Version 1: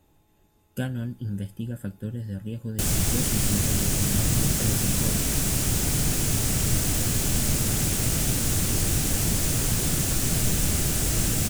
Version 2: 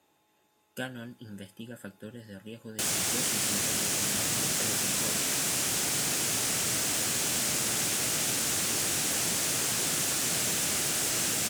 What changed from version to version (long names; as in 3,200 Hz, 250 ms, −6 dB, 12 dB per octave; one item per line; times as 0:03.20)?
master: add meter weighting curve A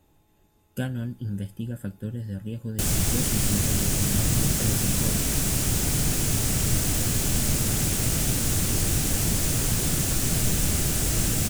master: remove meter weighting curve A